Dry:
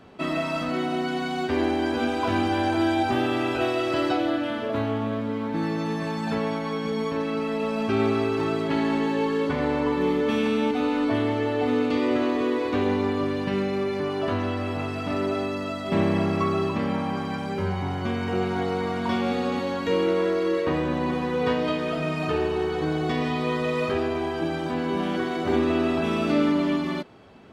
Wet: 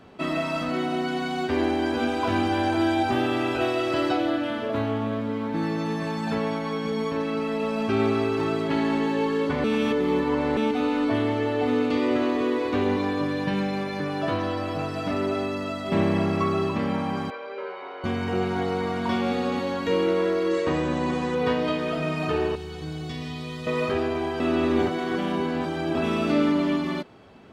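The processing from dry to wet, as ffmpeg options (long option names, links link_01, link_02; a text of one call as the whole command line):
ffmpeg -i in.wav -filter_complex "[0:a]asettb=1/sr,asplit=3[link_01][link_02][link_03];[link_01]atrim=end=12.964[link_04];[link_02]atrim=start=12.96:end=15.11,asetpts=PTS-STARTPTS,afade=type=in:duration=0.004:curve=qsin,afade=type=out:start_time=2.146:duration=0.004:curve=qsin,aecho=1:1:6.3:0.66,atrim=end_sample=94815[link_05];[link_03]atrim=start=15.106[link_06];[link_04][link_05]acrossfade=duration=0.004:curve1=hsin:curve2=qsin[link_07];[link_07][link_06]acrossfade=duration=0.004:curve1=qsin:curve2=hsin,asettb=1/sr,asplit=3[link_08][link_09][link_10];[link_08]atrim=end=17.304[link_11];[link_09]atrim=start=17.3:end=18.04,asetpts=PTS-STARTPTS,afade=type=in:duration=0.004:curve=qsin,afade=type=out:start_time=0.736:duration=0.004:curve=qsin,highpass=frequency=480:width=0.5412,highpass=frequency=480:width=1.3066,equalizer=frequency=490:width_type=q:width=4:gain=8,equalizer=frequency=790:width_type=q:width=4:gain=-10,equalizer=frequency=1800:width_type=q:width=4:gain=-6,equalizer=frequency=3100:width_type=q:width=4:gain=-6,lowpass=frequency=3500:width=0.5412,lowpass=frequency=3500:width=1.3066[link_12];[link_10]atrim=start=18.036[link_13];[link_11][link_12]acrossfade=duration=0.004:curve1=hsin:curve2=qsin[link_14];[link_14][link_13]acrossfade=duration=0.004:curve1=qsin:curve2=hsin,asettb=1/sr,asplit=3[link_15][link_16][link_17];[link_15]atrim=end=20.514[link_18];[link_16]atrim=start=20.51:end=21.35,asetpts=PTS-STARTPTS,afade=type=in:duration=0.004:curve=qsin,afade=type=out:start_time=0.836:duration=0.004:curve=qsin,lowpass=frequency=7600:width_type=q:width=3[link_19];[link_17]atrim=start=21.346[link_20];[link_18][link_19]acrossfade=duration=0.004:curve1=hsin:curve2=qsin[link_21];[link_21][link_20]acrossfade=duration=0.004:curve1=qsin:curve2=hsin,asettb=1/sr,asplit=3[link_22][link_23][link_24];[link_22]atrim=end=22.554[link_25];[link_23]atrim=start=22.55:end=23.67,asetpts=PTS-STARTPTS,afade=type=in:duration=0.004:curve=qsin,afade=type=out:start_time=1.116:duration=0.004:curve=qsin,acrossover=split=170|3000[link_26][link_27][link_28];[link_27]acompressor=threshold=-44dB:ratio=2.5:attack=3.2:release=140:knee=2.83:detection=peak[link_29];[link_26][link_29][link_28]amix=inputs=3:normalize=0[link_30];[link_24]atrim=start=23.666[link_31];[link_25][link_30]acrossfade=duration=0.004:curve1=hsin:curve2=qsin[link_32];[link_32][link_31]acrossfade=duration=0.004:curve1=qsin:curve2=hsin,asplit=5[link_33][link_34][link_35][link_36][link_37];[link_33]atrim=end=9.642[link_38];[link_34]atrim=start=9.638:end=10.572,asetpts=PTS-STARTPTS,areverse[link_39];[link_35]atrim=start=10.568:end=24.402[link_40];[link_36]atrim=start=24.398:end=25.952,asetpts=PTS-STARTPTS,areverse[link_41];[link_37]atrim=start=25.948[link_42];[link_38][link_39]acrossfade=duration=0.004:curve1=hsin:curve2=hsin[link_43];[link_43][link_40]acrossfade=duration=0.004:curve1=hsin:curve2=hsin[link_44];[link_44][link_41]acrossfade=duration=0.004:curve1=hsin:curve2=hsin[link_45];[link_45][link_42]acrossfade=duration=0.004:curve1=hsin:curve2=hsin" out.wav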